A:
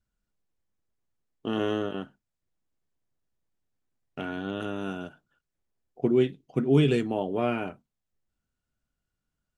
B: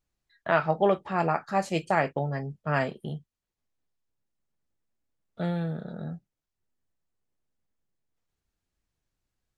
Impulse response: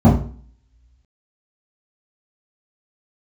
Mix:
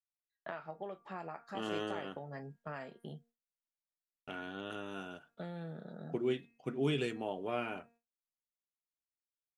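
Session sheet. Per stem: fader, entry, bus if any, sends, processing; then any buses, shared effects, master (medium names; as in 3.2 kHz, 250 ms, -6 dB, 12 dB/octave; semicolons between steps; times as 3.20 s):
-5.5 dB, 0.10 s, no send, bass shelf 450 Hz -9.5 dB
-7.5 dB, 0.00 s, no send, high-pass 180 Hz 12 dB/octave; compression 12:1, threshold -32 dBFS, peak gain reduction 15.5 dB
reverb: none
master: de-hum 233.7 Hz, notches 11; gate with hold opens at -59 dBFS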